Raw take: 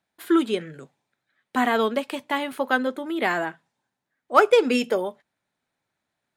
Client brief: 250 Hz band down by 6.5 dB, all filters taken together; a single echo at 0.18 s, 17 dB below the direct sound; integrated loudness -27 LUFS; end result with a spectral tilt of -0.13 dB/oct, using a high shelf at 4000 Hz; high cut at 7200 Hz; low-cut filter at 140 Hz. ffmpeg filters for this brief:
-af "highpass=140,lowpass=7.2k,equalizer=f=250:t=o:g=-8.5,highshelf=f=4k:g=6,aecho=1:1:180:0.141,volume=-2.5dB"

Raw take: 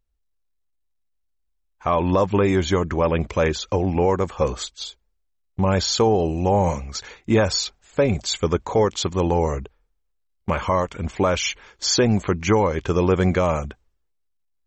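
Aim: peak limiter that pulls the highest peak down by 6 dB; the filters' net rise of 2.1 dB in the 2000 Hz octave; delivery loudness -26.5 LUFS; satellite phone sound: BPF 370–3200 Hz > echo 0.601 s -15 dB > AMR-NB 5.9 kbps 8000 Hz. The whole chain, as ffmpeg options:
-af "equalizer=f=2k:t=o:g=3.5,alimiter=limit=-13dB:level=0:latency=1,highpass=370,lowpass=3.2k,aecho=1:1:601:0.178,volume=2dB" -ar 8000 -c:a libopencore_amrnb -b:a 5900

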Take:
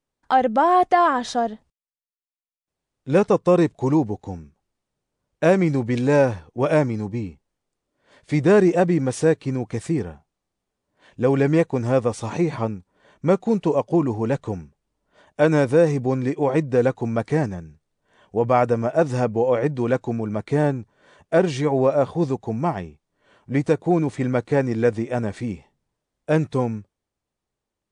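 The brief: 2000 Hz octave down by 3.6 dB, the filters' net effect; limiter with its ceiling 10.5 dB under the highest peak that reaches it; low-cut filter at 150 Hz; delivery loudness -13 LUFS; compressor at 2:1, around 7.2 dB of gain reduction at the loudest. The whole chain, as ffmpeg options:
-af "highpass=150,equalizer=f=2k:t=o:g=-5,acompressor=threshold=-25dB:ratio=2,volume=19dB,alimiter=limit=-2.5dB:level=0:latency=1"

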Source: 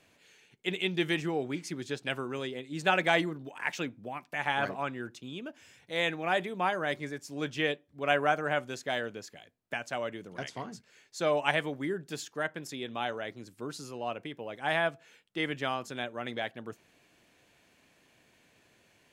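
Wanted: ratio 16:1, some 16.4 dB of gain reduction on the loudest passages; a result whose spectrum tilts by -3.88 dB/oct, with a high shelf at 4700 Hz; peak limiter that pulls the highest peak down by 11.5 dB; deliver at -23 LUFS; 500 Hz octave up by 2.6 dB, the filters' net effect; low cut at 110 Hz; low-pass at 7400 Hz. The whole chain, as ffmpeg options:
-af "highpass=110,lowpass=7.4k,equalizer=f=500:t=o:g=3.5,highshelf=f=4.7k:g=-7,acompressor=threshold=-37dB:ratio=16,volume=23.5dB,alimiter=limit=-11.5dB:level=0:latency=1"

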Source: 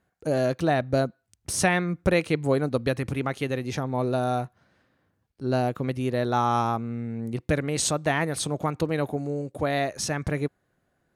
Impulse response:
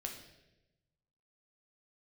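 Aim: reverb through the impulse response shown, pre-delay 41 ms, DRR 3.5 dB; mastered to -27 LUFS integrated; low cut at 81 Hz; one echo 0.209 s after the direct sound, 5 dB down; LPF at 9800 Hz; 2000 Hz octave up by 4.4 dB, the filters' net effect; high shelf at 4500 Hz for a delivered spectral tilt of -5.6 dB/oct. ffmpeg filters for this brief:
-filter_complex "[0:a]highpass=81,lowpass=9.8k,equalizer=f=2k:t=o:g=6,highshelf=f=4.5k:g=-5,aecho=1:1:209:0.562,asplit=2[a][b];[1:a]atrim=start_sample=2205,adelay=41[c];[b][c]afir=irnorm=-1:irlink=0,volume=-2dB[d];[a][d]amix=inputs=2:normalize=0,volume=-4dB"

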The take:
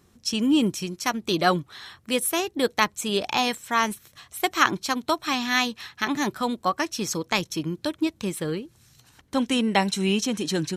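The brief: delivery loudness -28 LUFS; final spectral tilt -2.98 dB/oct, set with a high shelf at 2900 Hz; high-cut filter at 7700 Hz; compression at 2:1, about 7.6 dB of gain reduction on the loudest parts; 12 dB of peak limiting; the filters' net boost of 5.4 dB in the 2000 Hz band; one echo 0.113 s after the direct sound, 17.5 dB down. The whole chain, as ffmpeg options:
-af "lowpass=7.7k,equalizer=f=2k:t=o:g=4,highshelf=f=2.9k:g=7,acompressor=threshold=-23dB:ratio=2,alimiter=limit=-16dB:level=0:latency=1,aecho=1:1:113:0.133"

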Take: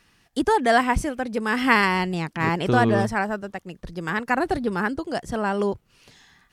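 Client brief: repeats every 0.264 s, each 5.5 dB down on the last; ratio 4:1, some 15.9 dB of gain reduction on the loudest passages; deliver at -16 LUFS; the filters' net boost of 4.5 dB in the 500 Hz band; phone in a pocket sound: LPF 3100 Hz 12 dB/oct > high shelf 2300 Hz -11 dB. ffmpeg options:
-af "equalizer=f=500:t=o:g=6.5,acompressor=threshold=-31dB:ratio=4,lowpass=3.1k,highshelf=f=2.3k:g=-11,aecho=1:1:264|528|792|1056|1320|1584|1848:0.531|0.281|0.149|0.079|0.0419|0.0222|0.0118,volume=17dB"

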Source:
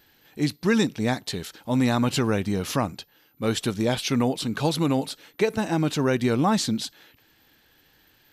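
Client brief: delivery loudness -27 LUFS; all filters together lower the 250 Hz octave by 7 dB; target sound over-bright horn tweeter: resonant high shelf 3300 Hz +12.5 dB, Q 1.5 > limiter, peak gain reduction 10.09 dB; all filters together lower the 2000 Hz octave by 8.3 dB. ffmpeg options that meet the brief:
-af "equalizer=f=250:t=o:g=-8.5,equalizer=f=2k:t=o:g=-8.5,highshelf=f=3.3k:t=q:w=1.5:g=12.5,volume=-1.5dB,alimiter=limit=-14.5dB:level=0:latency=1"

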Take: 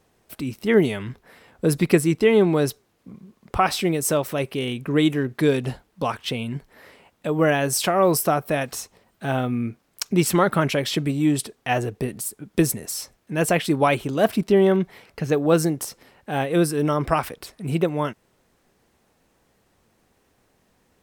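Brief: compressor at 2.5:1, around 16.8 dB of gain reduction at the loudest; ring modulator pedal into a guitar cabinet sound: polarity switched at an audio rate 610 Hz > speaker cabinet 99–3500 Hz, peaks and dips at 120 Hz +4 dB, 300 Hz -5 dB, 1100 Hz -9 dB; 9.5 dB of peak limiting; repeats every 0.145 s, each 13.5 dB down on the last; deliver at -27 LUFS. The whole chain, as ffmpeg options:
-af "acompressor=threshold=-38dB:ratio=2.5,alimiter=level_in=3dB:limit=-24dB:level=0:latency=1,volume=-3dB,aecho=1:1:145|290:0.211|0.0444,aeval=exprs='val(0)*sgn(sin(2*PI*610*n/s))':c=same,highpass=99,equalizer=f=120:t=q:w=4:g=4,equalizer=f=300:t=q:w=4:g=-5,equalizer=f=1.1k:t=q:w=4:g=-9,lowpass=f=3.5k:w=0.5412,lowpass=f=3.5k:w=1.3066,volume=12.5dB"

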